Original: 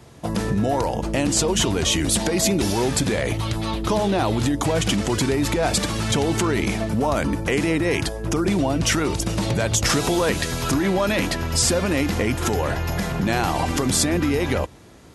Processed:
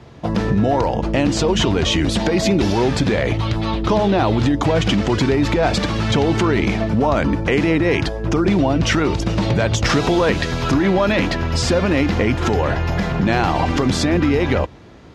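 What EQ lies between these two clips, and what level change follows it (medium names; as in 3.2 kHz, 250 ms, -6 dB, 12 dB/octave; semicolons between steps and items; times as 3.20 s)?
distance through air 220 m; treble shelf 6.2 kHz +10 dB; +5.0 dB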